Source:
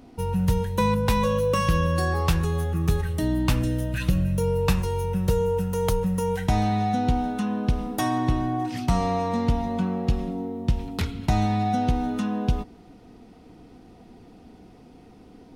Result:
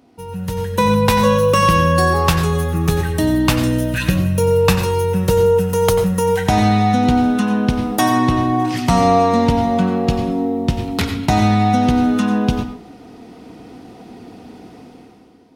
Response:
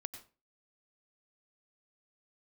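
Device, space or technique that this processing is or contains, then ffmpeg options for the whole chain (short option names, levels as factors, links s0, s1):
far laptop microphone: -filter_complex "[1:a]atrim=start_sample=2205[s0];[0:a][s0]afir=irnorm=-1:irlink=0,highpass=f=190:p=1,dynaudnorm=f=120:g=11:m=4.73,volume=1.19"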